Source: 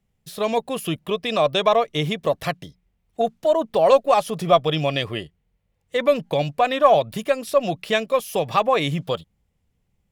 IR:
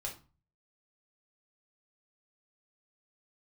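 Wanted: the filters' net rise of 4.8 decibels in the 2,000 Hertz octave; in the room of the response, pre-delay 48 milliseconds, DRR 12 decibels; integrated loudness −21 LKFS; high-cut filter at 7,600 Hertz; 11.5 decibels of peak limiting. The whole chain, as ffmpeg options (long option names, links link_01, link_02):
-filter_complex "[0:a]lowpass=7600,equalizer=frequency=2000:width_type=o:gain=6,alimiter=limit=-13dB:level=0:latency=1,asplit=2[link_01][link_02];[1:a]atrim=start_sample=2205,adelay=48[link_03];[link_02][link_03]afir=irnorm=-1:irlink=0,volume=-11.5dB[link_04];[link_01][link_04]amix=inputs=2:normalize=0,volume=3dB"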